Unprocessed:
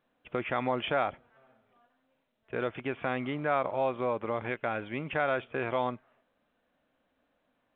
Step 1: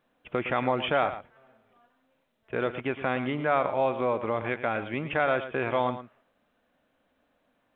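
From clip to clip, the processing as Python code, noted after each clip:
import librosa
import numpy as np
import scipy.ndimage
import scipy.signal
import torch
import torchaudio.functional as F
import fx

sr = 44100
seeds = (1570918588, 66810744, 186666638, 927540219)

y = x + 10.0 ** (-12.0 / 20.0) * np.pad(x, (int(112 * sr / 1000.0), 0))[:len(x)]
y = y * 10.0 ** (3.5 / 20.0)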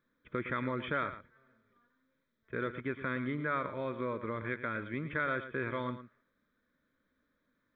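y = fx.fixed_phaser(x, sr, hz=2800.0, stages=6)
y = y * 10.0 ** (-3.5 / 20.0)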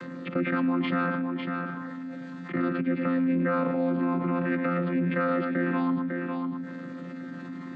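y = fx.chord_vocoder(x, sr, chord='bare fifth', root=53)
y = y + 10.0 ** (-16.0 / 20.0) * np.pad(y, (int(551 * sr / 1000.0), 0))[:len(y)]
y = fx.env_flatten(y, sr, amount_pct=70)
y = y * 10.0 ** (6.5 / 20.0)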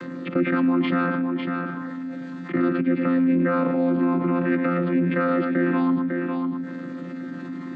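y = fx.peak_eq(x, sr, hz=320.0, db=6.5, octaves=0.46)
y = y * 10.0 ** (3.0 / 20.0)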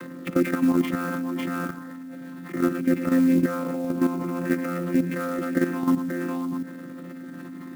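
y = fx.level_steps(x, sr, step_db=10)
y = fx.clock_jitter(y, sr, seeds[0], jitter_ms=0.023)
y = y * 10.0 ** (2.0 / 20.0)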